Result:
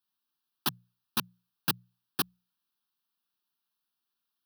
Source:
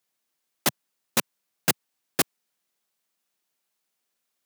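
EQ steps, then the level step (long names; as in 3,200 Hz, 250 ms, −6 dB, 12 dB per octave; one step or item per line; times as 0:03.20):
mains-hum notches 60/120/180 Hz
phaser with its sweep stopped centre 2,100 Hz, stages 6
−3.5 dB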